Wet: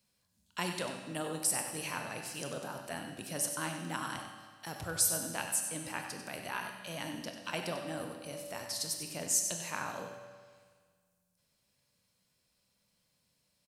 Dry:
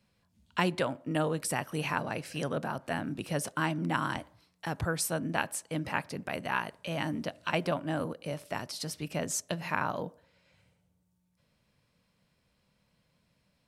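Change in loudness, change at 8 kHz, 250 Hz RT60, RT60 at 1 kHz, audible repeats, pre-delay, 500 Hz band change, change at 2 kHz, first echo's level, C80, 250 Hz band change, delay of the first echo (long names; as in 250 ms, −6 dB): −2.0 dB, +6.0 dB, 1.7 s, 1.7 s, 1, 23 ms, −7.0 dB, −6.0 dB, −10.0 dB, 5.5 dB, −8.5 dB, 95 ms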